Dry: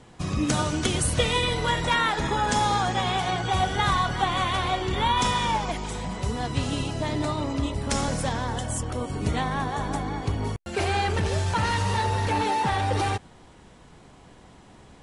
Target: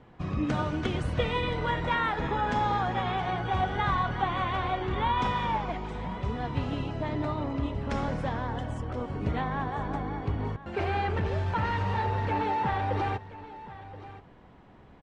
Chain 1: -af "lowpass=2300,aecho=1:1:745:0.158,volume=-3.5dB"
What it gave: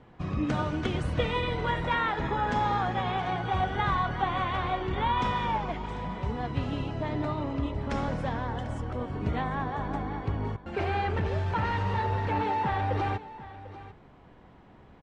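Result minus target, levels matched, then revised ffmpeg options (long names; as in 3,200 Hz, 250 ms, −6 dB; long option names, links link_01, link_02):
echo 282 ms early
-af "lowpass=2300,aecho=1:1:1027:0.158,volume=-3.5dB"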